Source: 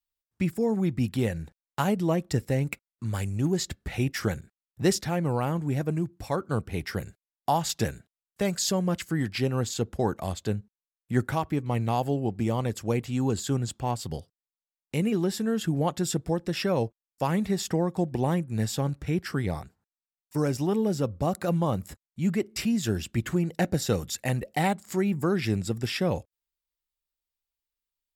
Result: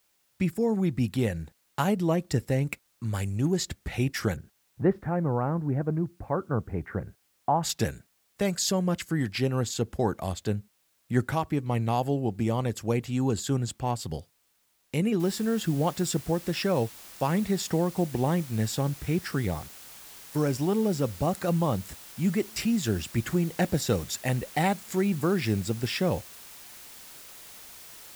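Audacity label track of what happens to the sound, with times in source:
4.360000	7.630000	LPF 1600 Hz 24 dB/oct
15.200000	15.200000	noise floor step -70 dB -47 dB

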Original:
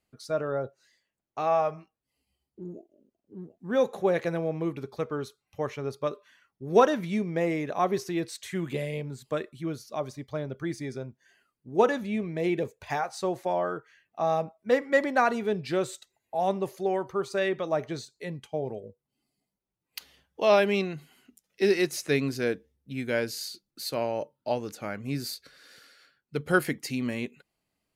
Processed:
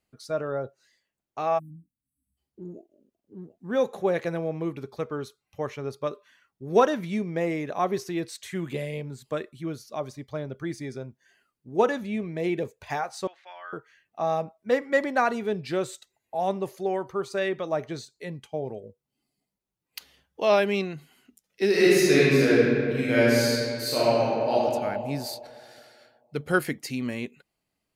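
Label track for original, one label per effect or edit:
1.590000	2.370000	spectral delete 310–7700 Hz
13.270000	13.730000	Butterworth band-pass 2300 Hz, Q 1
21.690000	24.530000	reverb throw, RT60 2.3 s, DRR -8.5 dB

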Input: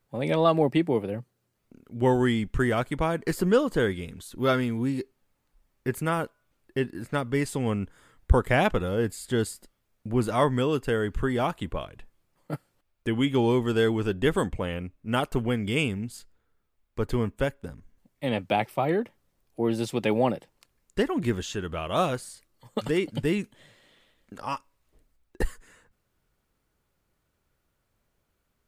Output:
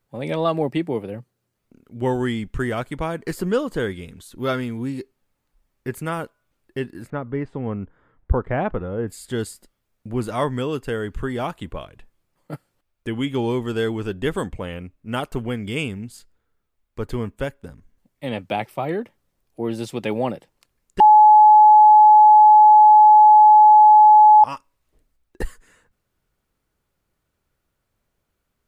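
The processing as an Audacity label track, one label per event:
7.100000	9.080000	LPF 1400 Hz
21.000000	24.440000	bleep 851 Hz -6.5 dBFS

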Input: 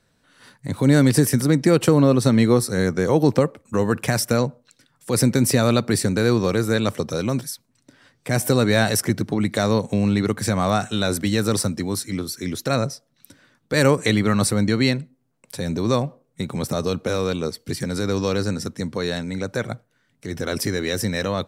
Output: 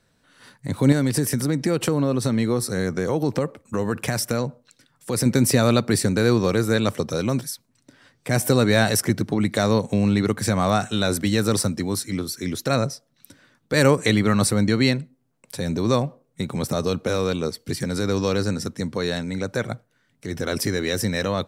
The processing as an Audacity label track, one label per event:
0.920000	5.260000	compressor 2:1, threshold -21 dBFS

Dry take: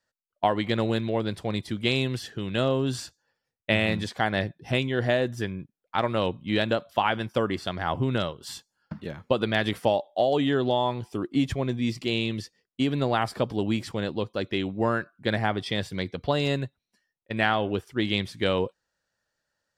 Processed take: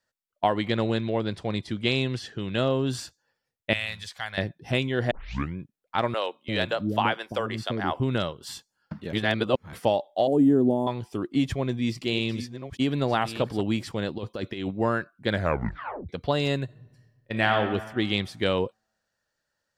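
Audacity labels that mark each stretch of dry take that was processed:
0.680000	2.900000	LPF 7400 Hz
3.730000	4.380000	passive tone stack bass-middle-treble 10-0-10
5.110000	5.110000	tape start 0.45 s
6.140000	8.000000	bands offset in time highs, lows 0.34 s, split 410 Hz
9.130000	9.730000	reverse
10.270000	10.870000	EQ curve 130 Hz 0 dB, 240 Hz +9 dB, 3800 Hz -27 dB, 9400 Hz +6 dB
11.480000	13.610000	reverse delay 0.647 s, level -10.5 dB
14.180000	14.710000	negative-ratio compressor -30 dBFS, ratio -0.5
15.300000	15.300000	tape stop 0.79 s
16.640000	17.570000	reverb throw, RT60 1.4 s, DRR 4.5 dB

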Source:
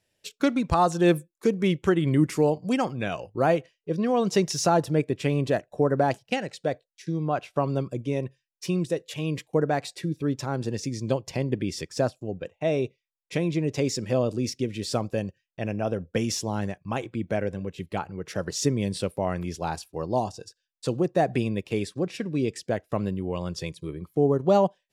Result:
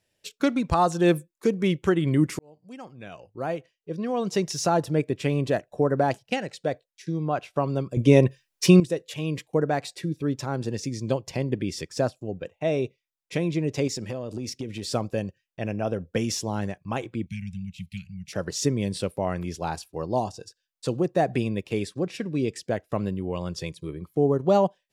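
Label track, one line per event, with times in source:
2.390000	5.070000	fade in
7.970000	8.800000	gain +12 dB
13.870000	14.910000	compressor 10:1, threshold -27 dBFS
17.260000	18.330000	Chebyshev band-stop 200–2300 Hz, order 4

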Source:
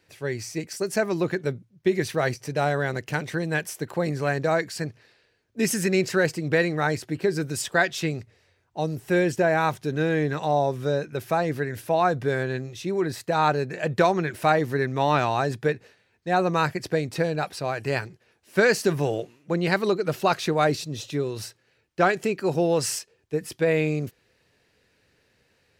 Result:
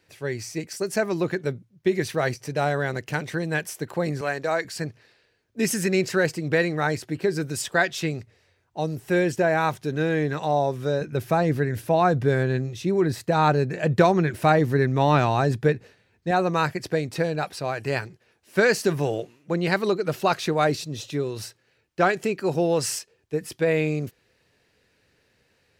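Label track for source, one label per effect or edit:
4.210000	4.650000	HPF 440 Hz 6 dB/oct
11.010000	16.310000	low shelf 310 Hz +8 dB

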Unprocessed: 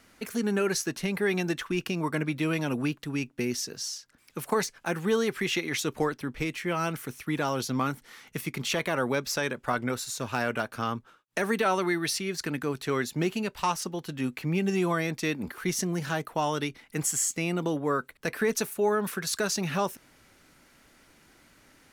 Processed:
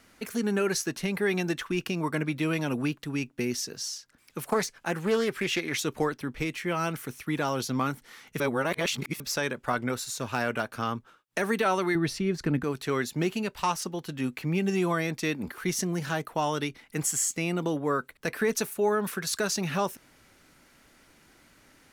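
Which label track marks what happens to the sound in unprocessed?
4.460000	5.720000	Doppler distortion depth 0.2 ms
8.400000	9.200000	reverse
11.950000	12.640000	tilt -3 dB/oct

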